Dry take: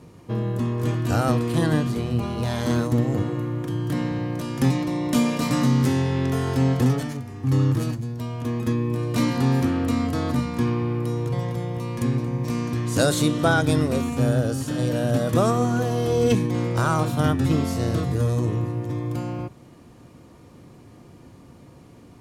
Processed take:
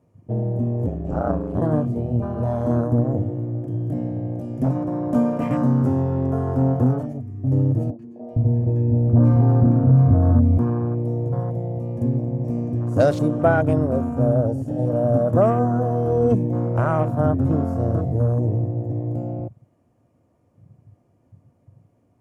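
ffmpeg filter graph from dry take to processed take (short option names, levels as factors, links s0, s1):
-filter_complex "[0:a]asettb=1/sr,asplit=3[s0][s1][s2];[s0]atrim=end=0.864[s3];[s1]atrim=start=0.86:end=1.62,asetpts=PTS-STARTPTS,afade=t=in:d=0.004:c=qsin,afade=t=out:st=0.756:d=0.004:c=qsin,acrossover=split=6800[s4][s5];[s5]acompressor=threshold=0.00178:ratio=4:attack=1:release=60[s6];[s4][s6]amix=inputs=2:normalize=0,aeval=exprs='val(0)*sin(2*PI*48*n/s)':c=same[s7];[s2]atrim=start=1.616[s8];[s3][s7]acrossfade=d=0.004:c1=hsin:c2=qsin[s9];[s9][s8]acrossfade=d=0.004:c1=qsin:c2=hsin,asettb=1/sr,asplit=3[s10][s11][s12];[s10]atrim=end=3.184[s13];[s11]atrim=start=3.18:end=4.76,asetpts=PTS-STARTPTS,afade=t=in:d=0.004:c=qsin,afade=t=out:st=1.576:d=0.004:c=qsin,equalizer=f=560:t=o:w=1.4:g=-4,bandreject=f=50:t=h:w=6,bandreject=f=100:t=h:w=6,bandreject=f=150:t=h:w=6,aeval=exprs='0.188*(abs(mod(val(0)/0.188+3,4)-2)-1)':c=same[s14];[s12]atrim=start=4.756[s15];[s13][s14]acrossfade=d=0.004:c1=hsin:c2=qsin[s16];[s16][s15]acrossfade=d=0.004:c1=qsin:c2=hsin,asettb=1/sr,asplit=3[s17][s18][s19];[s17]atrim=end=7.904[s20];[s18]atrim=start=7.9:end=10.58,asetpts=PTS-STARTPTS,afade=t=in:d=0.004:c=qsin,afade=t=out:st=2.676:d=0.004:c=qsin,aemphasis=mode=reproduction:type=bsi,acrossover=split=280|1100[s21][s22][s23];[s23]adelay=90[s24];[s21]adelay=460[s25];[s25][s22][s24]amix=inputs=3:normalize=0,atrim=end_sample=118188[s26];[s19]atrim=start=10.576[s27];[s20][s26]acrossfade=d=0.004:c1=hsin:c2=qsin[s28];[s28][s27]acrossfade=d=0.004:c1=qsin:c2=hsin,afwtdn=0.0316,equalizer=f=100:t=o:w=0.67:g=9,equalizer=f=250:t=o:w=0.67:g=4,equalizer=f=630:t=o:w=0.67:g=11,equalizer=f=4000:t=o:w=0.67:g=-9,volume=0.668"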